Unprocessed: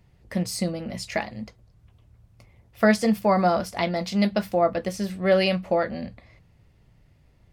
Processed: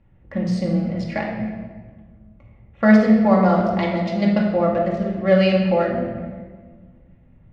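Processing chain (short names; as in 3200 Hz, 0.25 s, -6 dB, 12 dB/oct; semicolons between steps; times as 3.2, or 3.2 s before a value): Wiener smoothing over 9 samples; air absorption 160 m; shoebox room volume 1500 m³, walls mixed, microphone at 2.3 m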